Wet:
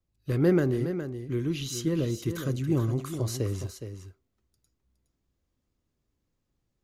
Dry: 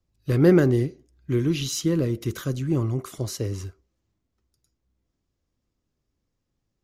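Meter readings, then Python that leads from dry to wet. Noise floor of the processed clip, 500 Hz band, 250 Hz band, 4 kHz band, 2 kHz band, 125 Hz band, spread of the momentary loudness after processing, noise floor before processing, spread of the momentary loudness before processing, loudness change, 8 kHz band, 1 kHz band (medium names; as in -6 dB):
-80 dBFS, -5.0 dB, -5.0 dB, -5.0 dB, -5.0 dB, -4.0 dB, 12 LU, -79 dBFS, 14 LU, -5.0 dB, -4.5 dB, -4.0 dB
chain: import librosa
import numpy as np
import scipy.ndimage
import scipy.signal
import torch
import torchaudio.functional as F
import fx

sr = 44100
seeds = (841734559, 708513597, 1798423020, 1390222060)

p1 = fx.peak_eq(x, sr, hz=5400.0, db=-3.5, octaves=0.29)
p2 = fx.rider(p1, sr, range_db=4, speed_s=2.0)
p3 = p2 + fx.echo_single(p2, sr, ms=415, db=-9.5, dry=0)
y = p3 * librosa.db_to_amplitude(-5.0)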